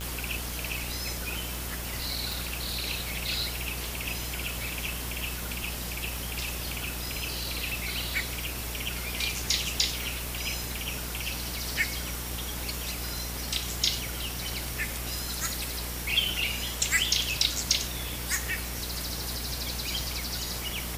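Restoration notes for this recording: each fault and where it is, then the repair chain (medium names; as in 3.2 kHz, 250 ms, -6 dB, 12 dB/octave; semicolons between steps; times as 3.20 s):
buzz 60 Hz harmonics 38 -38 dBFS
tick 78 rpm
2.33 s: pop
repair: de-click; de-hum 60 Hz, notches 38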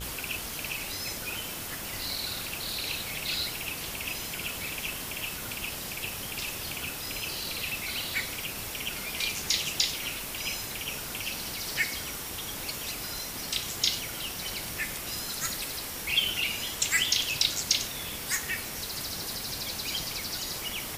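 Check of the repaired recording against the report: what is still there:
nothing left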